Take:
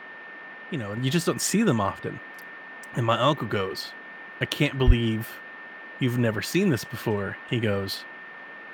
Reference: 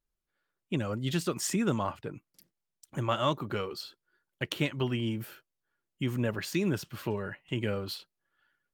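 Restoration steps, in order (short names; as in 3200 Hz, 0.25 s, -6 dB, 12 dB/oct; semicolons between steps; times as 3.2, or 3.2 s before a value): notch 1800 Hz, Q 30; de-plosive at 4.86; noise print and reduce 30 dB; gain 0 dB, from 0.97 s -6.5 dB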